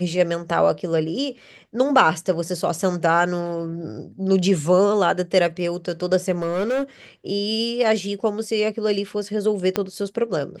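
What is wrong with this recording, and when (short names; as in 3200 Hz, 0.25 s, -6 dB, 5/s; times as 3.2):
6.31–6.83 clipped -19 dBFS
9.76 pop -7 dBFS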